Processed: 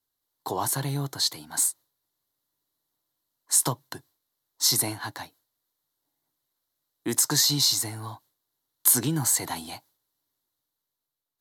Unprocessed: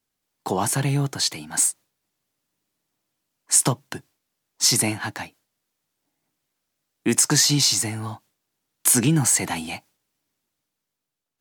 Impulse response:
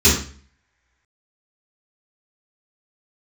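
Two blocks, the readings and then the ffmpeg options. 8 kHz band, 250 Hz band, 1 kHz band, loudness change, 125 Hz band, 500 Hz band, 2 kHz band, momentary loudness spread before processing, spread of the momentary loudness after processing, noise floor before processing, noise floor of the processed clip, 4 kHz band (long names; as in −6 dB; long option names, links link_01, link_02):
−4.5 dB, −8.0 dB, −4.0 dB, −3.5 dB, −7.5 dB, −6.0 dB, −8.0 dB, 19 LU, 21 LU, −82 dBFS, −85 dBFS, −2.0 dB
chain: -af "equalizer=frequency=200:width_type=o:width=0.33:gain=-11,equalizer=frequency=1000:width_type=o:width=0.33:gain=5,equalizer=frequency=2500:width_type=o:width=0.33:gain=-11,equalizer=frequency=4000:width_type=o:width=0.33:gain=8,equalizer=frequency=12500:width_type=o:width=0.33:gain=12,volume=-6dB"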